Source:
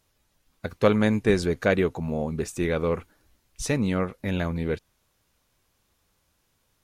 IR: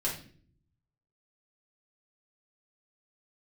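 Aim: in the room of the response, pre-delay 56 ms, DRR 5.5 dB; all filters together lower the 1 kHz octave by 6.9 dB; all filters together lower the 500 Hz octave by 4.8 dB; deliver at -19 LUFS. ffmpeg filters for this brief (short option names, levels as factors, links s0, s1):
-filter_complex "[0:a]equalizer=f=500:t=o:g=-4,equalizer=f=1000:t=o:g=-8.5,asplit=2[s0][s1];[1:a]atrim=start_sample=2205,adelay=56[s2];[s1][s2]afir=irnorm=-1:irlink=0,volume=0.282[s3];[s0][s3]amix=inputs=2:normalize=0,volume=2.37"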